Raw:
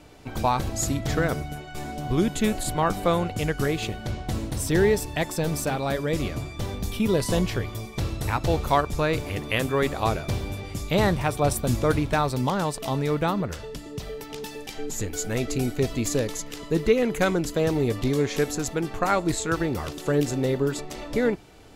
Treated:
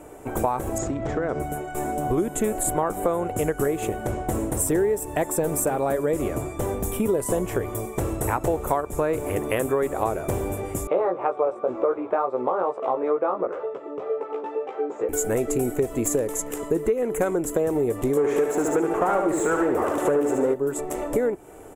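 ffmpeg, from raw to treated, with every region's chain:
ffmpeg -i in.wav -filter_complex "[0:a]asettb=1/sr,asplit=3[link_01][link_02][link_03];[link_01]atrim=end=0.784[link_04];[link_02]atrim=start=0.78:end=1.4,asetpts=PTS-STARTPTS,afade=type=in:duration=0.004:curve=qsin,afade=type=out:start_time=0.616:duration=0.004:curve=qsin,lowpass=frequency=5300:width=0.5412,lowpass=frequency=5300:width=1.3066,acompressor=threshold=-27dB:ratio=6:attack=3.2:release=140:knee=1:detection=peak[link_05];[link_03]atrim=start=1.396[link_06];[link_04][link_05]acrossfade=duration=0.004:curve1=hsin:curve2=qsin[link_07];[link_07][link_06]acrossfade=duration=0.004:curve1=qsin:curve2=hsin,asettb=1/sr,asplit=3[link_08][link_09][link_10];[link_08]atrim=end=10.874[link_11];[link_09]atrim=start=10.87:end=15.09,asetpts=PTS-STARTPTS,afade=type=in:duration=0.004:curve=qsin,afade=type=out:start_time=4.216:duration=0.004:curve=qsin,flanger=delay=15:depth=2.1:speed=2.1,highpass=350,equalizer=frequency=370:width_type=q:width=4:gain=4,equalizer=frequency=520:width_type=q:width=4:gain=8,equalizer=frequency=760:width_type=q:width=4:gain=4,equalizer=frequency=1200:width_type=q:width=4:gain=9,equalizer=frequency=1800:width_type=q:width=4:gain=-5,equalizer=frequency=3000:width_type=q:width=4:gain=-5,lowpass=frequency=3300:width=0.5412,lowpass=frequency=3300:width=1.3066[link_12];[link_10]atrim=start=15.086[link_13];[link_11][link_12]acrossfade=duration=0.004:curve1=hsin:curve2=qsin[link_14];[link_14][link_13]acrossfade=duration=0.004:curve1=qsin:curve2=hsin,asettb=1/sr,asplit=3[link_15][link_16][link_17];[link_15]atrim=end=18.174[link_18];[link_16]atrim=start=18.17:end=20.54,asetpts=PTS-STARTPTS,afade=type=in:duration=0.004:curve=qsin,afade=type=out:start_time=2.366:duration=0.004:curve=qsin,asplit=2[link_19][link_20];[link_20]highpass=frequency=720:poles=1,volume=22dB,asoftclip=type=tanh:threshold=-9dB[link_21];[link_19][link_21]amix=inputs=2:normalize=0,lowpass=frequency=1500:poles=1,volume=-6dB,aecho=1:1:72|144|216|288|360|432:0.562|0.253|0.114|0.0512|0.0231|0.0104,atrim=end_sample=104517[link_22];[link_17]atrim=start=20.536[link_23];[link_18][link_22]acrossfade=duration=0.004:curve1=hsin:curve2=qsin[link_24];[link_24][link_23]acrossfade=duration=0.004:curve1=qsin:curve2=hsin,firequalizer=gain_entry='entry(180,0);entry(370,11);entry(4400,-15);entry(7600,10)':delay=0.05:min_phase=1,acompressor=threshold=-20dB:ratio=6" out.wav

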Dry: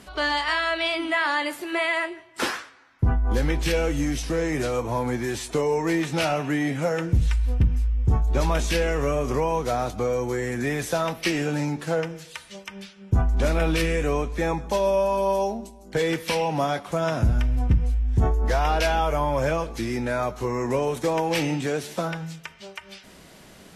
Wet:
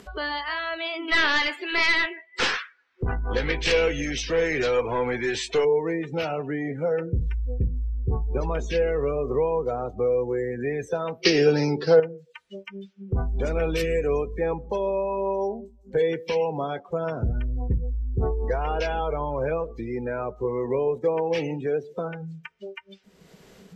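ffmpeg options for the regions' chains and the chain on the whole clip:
ffmpeg -i in.wav -filter_complex "[0:a]asettb=1/sr,asplit=3[link_01][link_02][link_03];[link_01]atrim=end=1.084[link_04];[link_02]atrim=start=1.08:end=5.65,asetpts=PTS-STARTPTS,afade=type=in:duration=0.004:curve=qsin,afade=type=out:start_time=4.566:duration=0.004:curve=qsin,equalizer=frequency=2800:width_type=o:width=2.9:gain=14,aeval=exprs='clip(val(0),-1,0.0944)':channel_layout=same[link_05];[link_03]atrim=start=5.646[link_06];[link_04][link_05]acrossfade=duration=0.004:curve1=hsin:curve2=qsin[link_07];[link_07][link_06]acrossfade=duration=0.004:curve1=qsin:curve2=hsin,asettb=1/sr,asplit=3[link_08][link_09][link_10];[link_08]atrim=end=11.254[link_11];[link_09]atrim=start=11.25:end=12,asetpts=PTS-STARTPTS,afade=type=in:duration=0.004:curve=qsin,afade=type=out:start_time=0.746:duration=0.004:curve=qsin,equalizer=frequency=400:width_type=o:width=0.28:gain=7,acontrast=63,lowpass=frequency=4900:width_type=q:width=3.6[link_12];[link_10]atrim=start=11.996[link_13];[link_11][link_12]acrossfade=duration=0.004:curve1=hsin:curve2=qsin[link_14];[link_14][link_13]acrossfade=duration=0.004:curve1=qsin:curve2=hsin,asettb=1/sr,asplit=3[link_15][link_16][link_17];[link_15]atrim=end=13.184[link_18];[link_16]atrim=start=13.18:end=14.39,asetpts=PTS-STARTPTS,afade=type=in:duration=0.004:curve=qsin,afade=type=out:start_time=1.206:duration=0.004:curve=qsin,highshelf=frequency=5100:gain=8.5,aeval=exprs='val(0)+0.0141*(sin(2*PI*50*n/s)+sin(2*PI*2*50*n/s)/2+sin(2*PI*3*50*n/s)/3+sin(2*PI*4*50*n/s)/4+sin(2*PI*5*50*n/s)/5)':channel_layout=same,acrusher=bits=8:mode=log:mix=0:aa=0.000001[link_19];[link_17]atrim=start=14.386[link_20];[link_18][link_19]acrossfade=duration=0.004:curve1=hsin:curve2=qsin[link_21];[link_21][link_20]acrossfade=duration=0.004:curve1=qsin:curve2=hsin,afftdn=noise_reduction=27:noise_floor=-31,superequalizer=7b=2.51:16b=0.447,acompressor=mode=upward:threshold=-24dB:ratio=2.5,volume=-5dB" out.wav

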